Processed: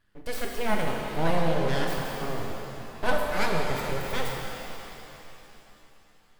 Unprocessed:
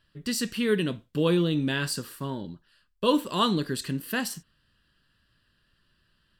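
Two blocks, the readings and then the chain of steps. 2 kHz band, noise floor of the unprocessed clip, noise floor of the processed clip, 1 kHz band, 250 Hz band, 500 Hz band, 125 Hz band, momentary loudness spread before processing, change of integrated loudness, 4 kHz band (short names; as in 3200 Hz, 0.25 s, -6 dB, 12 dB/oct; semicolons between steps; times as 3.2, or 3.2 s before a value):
+2.5 dB, -70 dBFS, -58 dBFS, +3.0 dB, -6.5 dB, 0.0 dB, -2.0 dB, 11 LU, -2.5 dB, -5.0 dB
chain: band shelf 4500 Hz -9.5 dB; full-wave rectifier; shimmer reverb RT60 3.2 s, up +7 st, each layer -8 dB, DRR 0 dB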